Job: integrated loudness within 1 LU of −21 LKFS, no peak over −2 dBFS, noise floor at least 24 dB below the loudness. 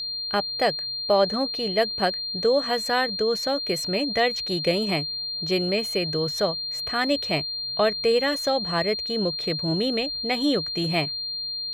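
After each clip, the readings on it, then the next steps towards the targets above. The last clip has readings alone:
interfering tone 4,200 Hz; level of the tone −28 dBFS; integrated loudness −24.0 LKFS; sample peak −9.5 dBFS; target loudness −21.0 LKFS
→ notch filter 4,200 Hz, Q 30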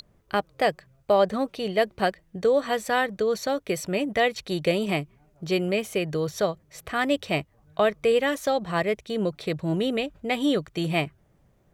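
interfering tone none found; integrated loudness −26.0 LKFS; sample peak −10.0 dBFS; target loudness −21.0 LKFS
→ level +5 dB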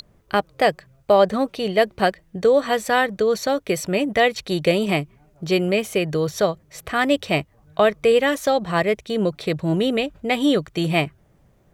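integrated loudness −21.0 LKFS; sample peak −5.0 dBFS; background noise floor −58 dBFS

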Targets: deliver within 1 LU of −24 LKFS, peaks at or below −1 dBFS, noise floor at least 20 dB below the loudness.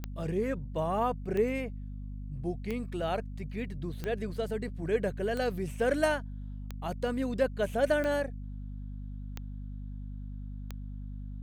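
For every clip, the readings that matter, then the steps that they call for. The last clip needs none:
number of clicks 9; mains hum 50 Hz; hum harmonics up to 250 Hz; level of the hum −37 dBFS; integrated loudness −33.5 LKFS; sample peak −14.5 dBFS; target loudness −24.0 LKFS
→ click removal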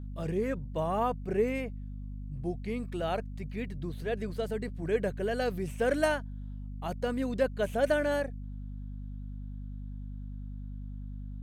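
number of clicks 0; mains hum 50 Hz; hum harmonics up to 250 Hz; level of the hum −37 dBFS
→ mains-hum notches 50/100/150/200/250 Hz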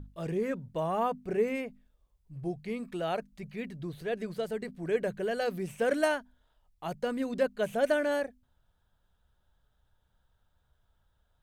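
mains hum none found; integrated loudness −32.5 LKFS; sample peak −15.0 dBFS; target loudness −24.0 LKFS
→ level +8.5 dB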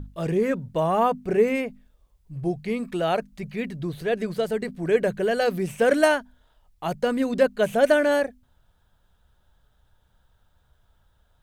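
integrated loudness −24.0 LKFS; sample peak −6.5 dBFS; background noise floor −65 dBFS

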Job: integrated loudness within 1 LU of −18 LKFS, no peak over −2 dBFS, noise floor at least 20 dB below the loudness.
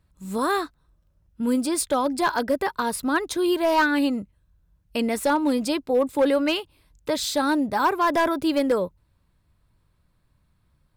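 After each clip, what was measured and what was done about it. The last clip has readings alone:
share of clipped samples 0.7%; peaks flattened at −14.0 dBFS; integrated loudness −23.5 LKFS; sample peak −14.0 dBFS; target loudness −18.0 LKFS
→ clipped peaks rebuilt −14 dBFS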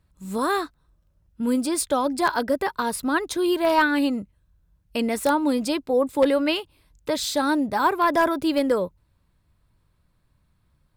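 share of clipped samples 0.0%; integrated loudness −23.5 LKFS; sample peak −5.0 dBFS; target loudness −18.0 LKFS
→ level +5.5 dB
brickwall limiter −2 dBFS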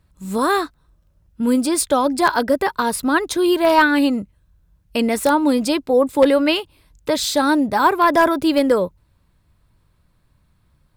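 integrated loudness −18.0 LKFS; sample peak −2.0 dBFS; background noise floor −62 dBFS

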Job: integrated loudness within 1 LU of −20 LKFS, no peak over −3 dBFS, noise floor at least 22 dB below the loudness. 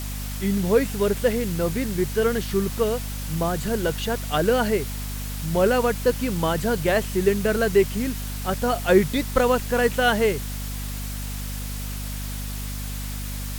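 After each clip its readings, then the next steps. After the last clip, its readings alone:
mains hum 50 Hz; hum harmonics up to 250 Hz; level of the hum −29 dBFS; background noise floor −31 dBFS; target noise floor −46 dBFS; integrated loudness −24.0 LKFS; sample peak −4.5 dBFS; target loudness −20.0 LKFS
→ hum removal 50 Hz, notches 5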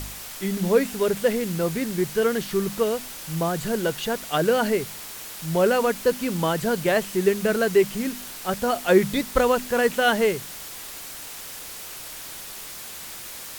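mains hum none found; background noise floor −38 dBFS; target noise floor −46 dBFS
→ broadband denoise 8 dB, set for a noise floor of −38 dBFS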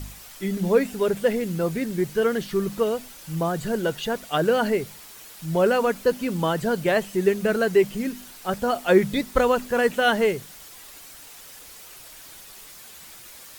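background noise floor −45 dBFS; target noise floor −46 dBFS
→ broadband denoise 6 dB, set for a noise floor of −45 dBFS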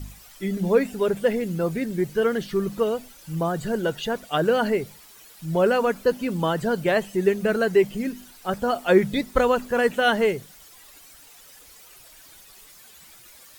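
background noise floor −49 dBFS; integrated loudness −23.5 LKFS; sample peak −5.5 dBFS; target loudness −20.0 LKFS
→ level +3.5 dB
brickwall limiter −3 dBFS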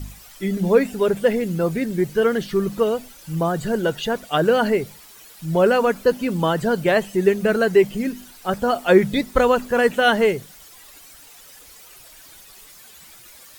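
integrated loudness −20.0 LKFS; sample peak −3.0 dBFS; background noise floor −46 dBFS

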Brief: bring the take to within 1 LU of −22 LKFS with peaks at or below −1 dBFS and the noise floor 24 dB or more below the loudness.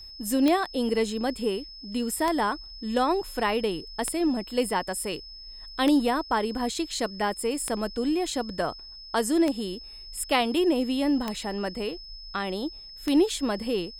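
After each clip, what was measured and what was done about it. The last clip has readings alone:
number of clicks 8; interfering tone 5,200 Hz; level of the tone −42 dBFS; integrated loudness −27.0 LKFS; sample peak −9.5 dBFS; target loudness −22.0 LKFS
→ click removal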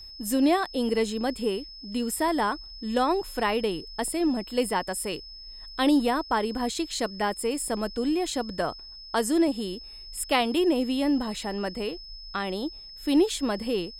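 number of clicks 0; interfering tone 5,200 Hz; level of the tone −42 dBFS
→ notch filter 5,200 Hz, Q 30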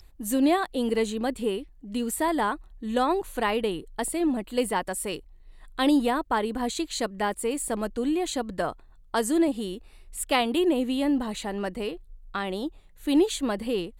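interfering tone none found; integrated loudness −27.5 LKFS; sample peak −11.5 dBFS; target loudness −22.0 LKFS
→ level +5.5 dB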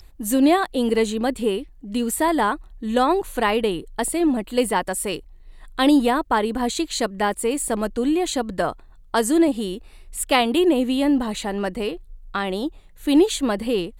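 integrated loudness −22.0 LKFS; sample peak −6.0 dBFS; background noise floor −47 dBFS

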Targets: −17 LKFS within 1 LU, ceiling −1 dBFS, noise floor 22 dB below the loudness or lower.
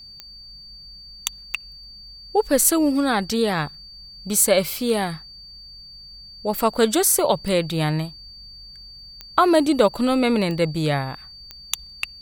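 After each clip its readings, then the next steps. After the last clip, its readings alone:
number of clicks 7; interfering tone 4,600 Hz; level of the tone −40 dBFS; integrated loudness −21.0 LKFS; sample peak −2.0 dBFS; target loudness −17.0 LKFS
→ click removal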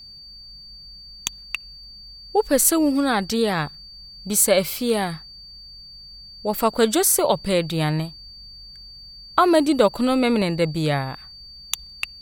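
number of clicks 0; interfering tone 4,600 Hz; level of the tone −40 dBFS
→ notch filter 4,600 Hz, Q 30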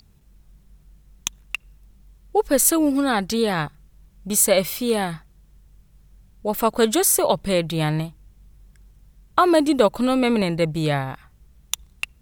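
interfering tone none found; integrated loudness −21.0 LKFS; sample peak −2.0 dBFS; target loudness −17.0 LKFS
→ level +4 dB
brickwall limiter −1 dBFS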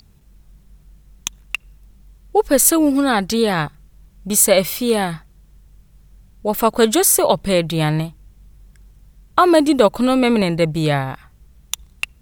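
integrated loudness −16.5 LKFS; sample peak −1.0 dBFS; background noise floor −52 dBFS

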